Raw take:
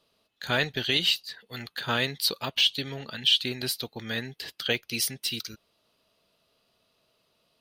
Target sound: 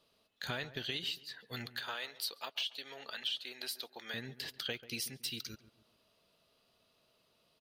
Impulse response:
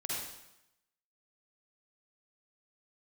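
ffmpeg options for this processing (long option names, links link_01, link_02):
-filter_complex "[0:a]acompressor=threshold=-35dB:ratio=4,asettb=1/sr,asplit=3[link_01][link_02][link_03];[link_01]atrim=end=1.764[link_04];[link_02]atrim=start=1.76:end=4.14,asetpts=PTS-STARTPTS,afade=type=in:duration=0.004:curve=qsin,afade=type=out:start_time=2.376:duration=0.004:curve=qsin,highpass=550[link_05];[link_03]atrim=start=4.136[link_06];[link_04][link_05]acrossfade=duration=0.004:curve1=hsin:curve2=qsin[link_07];[link_07][link_06]acrossfade=duration=0.004:curve1=qsin:curve2=hsin,asplit=2[link_08][link_09];[link_09]adelay=139,lowpass=frequency=1200:poles=1,volume=-14dB,asplit=2[link_10][link_11];[link_11]adelay=139,lowpass=frequency=1200:poles=1,volume=0.43,asplit=2[link_12][link_13];[link_13]adelay=139,lowpass=frequency=1200:poles=1,volume=0.43,asplit=2[link_14][link_15];[link_15]adelay=139,lowpass=frequency=1200:poles=1,volume=0.43[link_16];[link_08][link_10][link_12][link_14][link_16]amix=inputs=5:normalize=0,volume=-2.5dB"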